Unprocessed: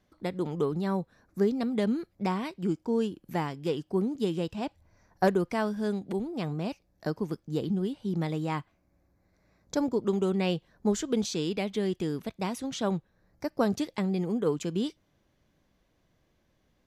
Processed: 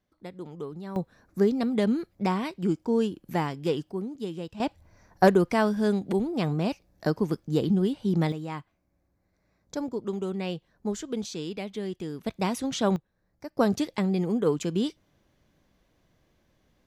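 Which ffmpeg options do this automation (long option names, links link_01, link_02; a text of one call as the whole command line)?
ffmpeg -i in.wav -af "asetnsamples=nb_out_samples=441:pad=0,asendcmd='0.96 volume volume 3dB;3.91 volume volume -5dB;4.6 volume volume 5.5dB;8.32 volume volume -4dB;12.26 volume volume 4.5dB;12.96 volume volume -6.5dB;13.57 volume volume 3dB',volume=-8.5dB" out.wav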